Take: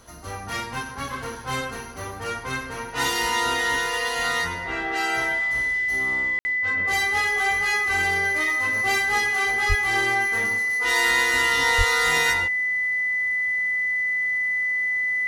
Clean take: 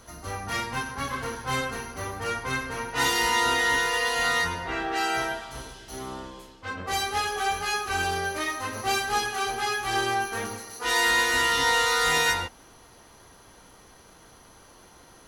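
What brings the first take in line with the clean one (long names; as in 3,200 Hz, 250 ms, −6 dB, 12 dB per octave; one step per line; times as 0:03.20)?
notch filter 2,000 Hz, Q 30
0:09.68–0:09.80: high-pass filter 140 Hz 24 dB per octave
0:11.77–0:11.89: high-pass filter 140 Hz 24 dB per octave
ambience match 0:06.39–0:06.45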